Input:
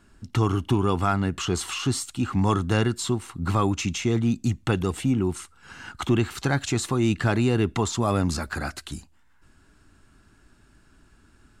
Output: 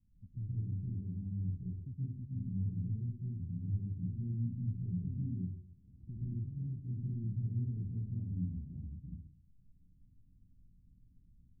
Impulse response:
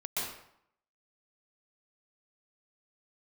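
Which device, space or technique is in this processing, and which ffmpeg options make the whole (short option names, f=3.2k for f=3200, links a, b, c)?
club heard from the street: -filter_complex "[0:a]alimiter=limit=-20.5dB:level=0:latency=1:release=57,lowpass=f=180:w=0.5412,lowpass=f=180:w=1.3066[a];[1:a]atrim=start_sample=2205[b];[a][b]afir=irnorm=-1:irlink=0,volume=-7.5dB"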